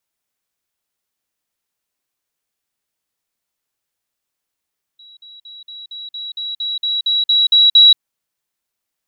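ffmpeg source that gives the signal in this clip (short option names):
-f lavfi -i "aevalsrc='pow(10,(-40+3*floor(t/0.23))/20)*sin(2*PI*3890*t)*clip(min(mod(t,0.23),0.18-mod(t,0.23))/0.005,0,1)':d=2.99:s=44100"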